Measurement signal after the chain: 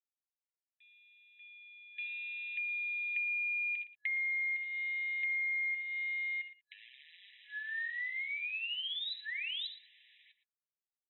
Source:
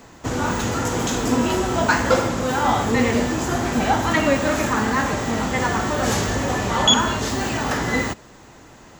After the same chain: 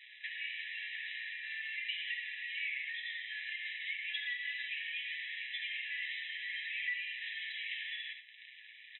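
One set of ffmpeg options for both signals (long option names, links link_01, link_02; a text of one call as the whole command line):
ffmpeg -i in.wav -filter_complex "[0:a]asplit=2[link_01][link_02];[link_02]aecho=0:1:63|77:0.251|0.2[link_03];[link_01][link_03]amix=inputs=2:normalize=0,acrusher=bits=7:dc=4:mix=0:aa=0.000001,aeval=exprs='val(0)*sin(2*PI*1400*n/s)':channel_layout=same,acompressor=threshold=-37dB:ratio=5,aecho=1:1:6.6:0.38,asplit=2[link_04][link_05];[link_05]aecho=0:1:115:0.178[link_06];[link_04][link_06]amix=inputs=2:normalize=0,afftfilt=real='re*between(b*sr/4096,1700,4000)':imag='im*between(b*sr/4096,1700,4000)':win_size=4096:overlap=0.75,volume=2.5dB" out.wav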